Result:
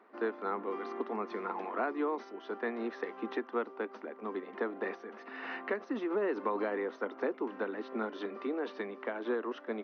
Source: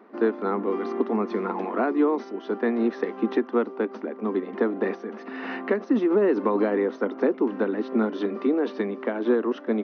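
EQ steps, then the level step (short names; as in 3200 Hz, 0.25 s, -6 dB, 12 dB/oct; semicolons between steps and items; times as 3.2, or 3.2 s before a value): HPF 1000 Hz 6 dB/oct; high shelf 3700 Hz -6.5 dB; -3.0 dB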